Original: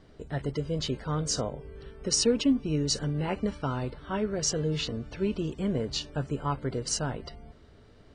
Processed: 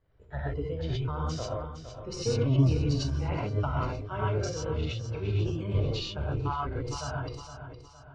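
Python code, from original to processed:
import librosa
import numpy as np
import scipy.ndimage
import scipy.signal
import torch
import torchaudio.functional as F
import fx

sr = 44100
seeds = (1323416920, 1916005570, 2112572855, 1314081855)

p1 = fx.octave_divider(x, sr, octaves=1, level_db=3.0)
p2 = fx.noise_reduce_blind(p1, sr, reduce_db=13)
p3 = p2 + fx.echo_feedback(p2, sr, ms=462, feedback_pct=42, wet_db=-10.0, dry=0)
p4 = fx.transient(p3, sr, attack_db=1, sustain_db=-12)
p5 = scipy.signal.sosfilt(scipy.signal.butter(2, 2600.0, 'lowpass', fs=sr, output='sos'), p4)
p6 = fx.peak_eq(p5, sr, hz=230.0, db=-12.5, octaves=0.9)
p7 = fx.rev_gated(p6, sr, seeds[0], gate_ms=150, shape='rising', drr_db=-4.0)
p8 = fx.sustainer(p7, sr, db_per_s=50.0)
y = F.gain(torch.from_numpy(p8), -4.5).numpy()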